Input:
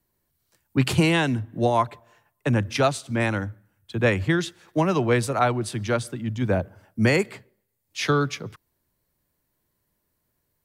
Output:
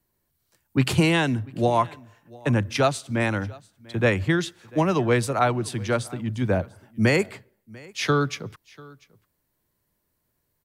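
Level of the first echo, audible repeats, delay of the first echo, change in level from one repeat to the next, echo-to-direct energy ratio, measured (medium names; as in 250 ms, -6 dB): -23.5 dB, 1, 693 ms, no regular repeats, -23.5 dB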